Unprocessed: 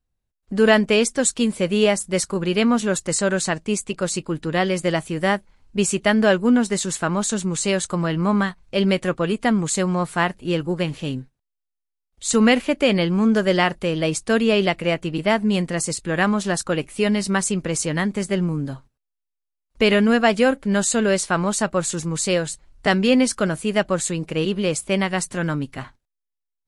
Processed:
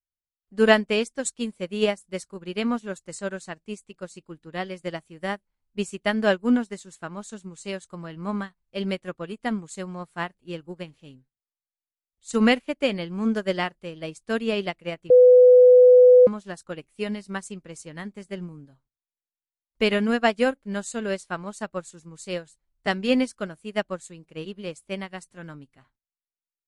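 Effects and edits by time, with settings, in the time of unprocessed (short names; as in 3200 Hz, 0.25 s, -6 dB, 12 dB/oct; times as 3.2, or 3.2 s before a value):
15.1–16.27 bleep 499 Hz -8.5 dBFS
whole clip: upward expander 2.5:1, over -28 dBFS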